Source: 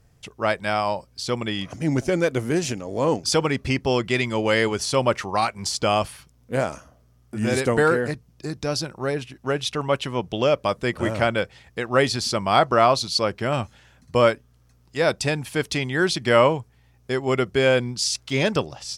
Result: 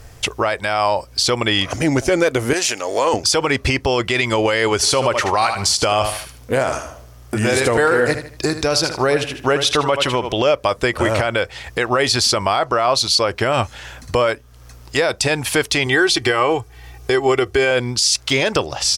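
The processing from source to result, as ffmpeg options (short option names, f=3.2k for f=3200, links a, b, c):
-filter_complex "[0:a]asettb=1/sr,asplit=3[a][b][c];[a]atrim=end=2.534[d];[b]atrim=start=2.53:end=3.14,asetpts=PTS-STARTPTS,afade=t=in:d=0.004:c=qsin,afade=t=out:st=0.606:d=0.004:c=qsin,highpass=f=1.1k:p=1[e];[c]atrim=start=3.136[f];[d][e]acrossfade=d=0.004:c1=hsin:c2=qsin[g];[g][f]acrossfade=d=0.004:c1=qsin:c2=hsin,asplit=3[h][i][j];[h]afade=t=out:st=4.82:d=0.02[k];[i]aecho=1:1:77|154|231:0.251|0.0678|0.0183,afade=t=in:st=4.82:d=0.02,afade=t=out:st=10.36:d=0.02[l];[j]afade=t=in:st=10.36:d=0.02[m];[k][l][m]amix=inputs=3:normalize=0,asettb=1/sr,asplit=3[n][o][p];[n]atrim=end=15.864[q];[o]atrim=start=15.86:end=17.71,asetpts=PTS-STARTPTS,afade=t=in:d=0.004:c=qsin,afade=t=out:st=1.846:d=0.004:c=qsin,aecho=1:1:2.6:0.63,atrim=end_sample=81585[r];[p]atrim=start=17.706[s];[q][r]acrossfade=d=0.004:c1=hsin:c2=qsin[t];[t][s]acrossfade=d=0.004:c1=qsin:c2=hsin,acompressor=threshold=-36dB:ratio=2,equalizer=f=180:w=1.1:g=-12,alimiter=level_in=26dB:limit=-1dB:release=50:level=0:latency=1,volume=-5.5dB"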